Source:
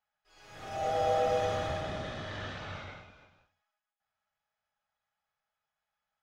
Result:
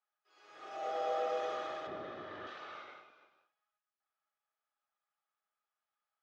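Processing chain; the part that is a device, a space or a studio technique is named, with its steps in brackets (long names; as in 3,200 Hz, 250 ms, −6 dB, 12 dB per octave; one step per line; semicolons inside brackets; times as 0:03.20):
high-pass filter 470 Hz 12 dB per octave
inside a cardboard box (low-pass filter 5,500 Hz 12 dB per octave; hollow resonant body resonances 360/1,200 Hz, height 10 dB, ringing for 25 ms)
0:01.87–0:02.47: RIAA equalisation playback
level −7 dB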